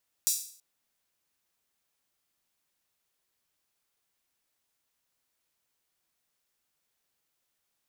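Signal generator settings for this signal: open hi-hat length 0.33 s, high-pass 6000 Hz, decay 0.51 s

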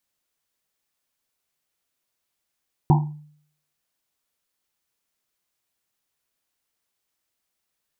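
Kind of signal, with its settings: Risset drum, pitch 150 Hz, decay 0.61 s, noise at 860 Hz, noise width 240 Hz, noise 20%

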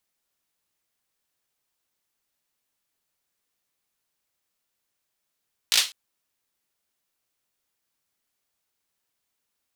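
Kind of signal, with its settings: hand clap length 0.20 s, apart 18 ms, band 3700 Hz, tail 0.26 s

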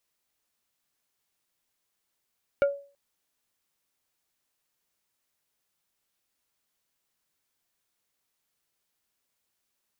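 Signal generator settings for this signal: wood hit plate, length 0.33 s, lowest mode 563 Hz, decay 0.39 s, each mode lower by 8.5 dB, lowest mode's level -16 dB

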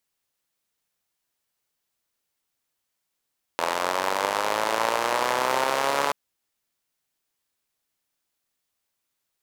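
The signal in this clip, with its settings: four-cylinder engine model, changing speed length 2.53 s, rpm 2500, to 4300, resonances 590/900 Hz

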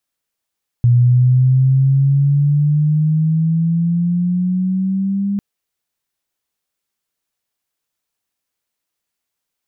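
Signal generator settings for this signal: gliding synth tone sine, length 4.55 s, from 120 Hz, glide +9 st, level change -8 dB, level -7.5 dB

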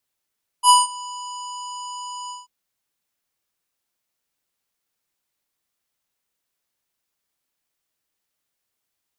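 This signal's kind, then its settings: synth note square B5 24 dB/oct, low-pass 7800 Hz, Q 7.9, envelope 0.5 oct, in 0.35 s, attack 67 ms, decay 0.17 s, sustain -23 dB, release 0.17 s, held 1.67 s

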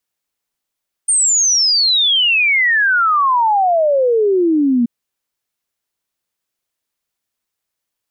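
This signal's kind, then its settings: log sweep 9000 Hz -> 230 Hz 3.78 s -10.5 dBFS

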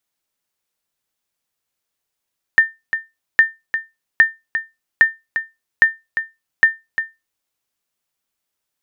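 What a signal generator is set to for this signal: sonar ping 1800 Hz, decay 0.21 s, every 0.81 s, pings 6, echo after 0.35 s, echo -10 dB -2 dBFS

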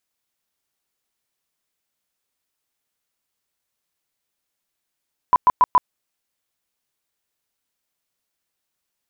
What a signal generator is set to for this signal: tone bursts 998 Hz, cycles 29, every 0.14 s, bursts 4, -9 dBFS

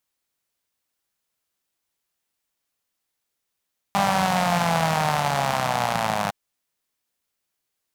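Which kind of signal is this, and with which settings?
four-cylinder engine model, changing speed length 2.36 s, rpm 6000, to 3000, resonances 170/740 Hz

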